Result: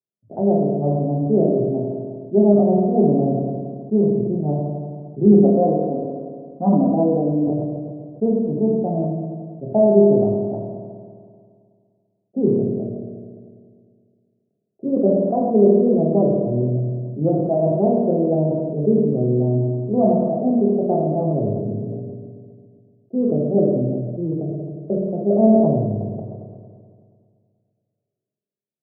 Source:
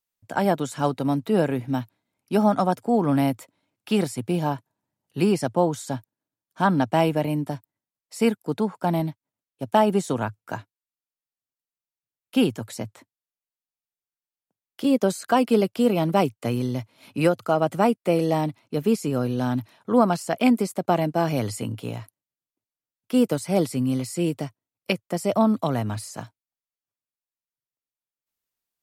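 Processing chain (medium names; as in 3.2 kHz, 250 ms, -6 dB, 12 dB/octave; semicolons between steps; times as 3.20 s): local Wiener filter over 41 samples; Chebyshev band-pass 110–700 Hz, order 4; 5.25–7.45 s: comb 4 ms, depth 96%; reverberation RT60 1.5 s, pre-delay 3 ms, DRR -2.5 dB; decay stretcher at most 28 dB/s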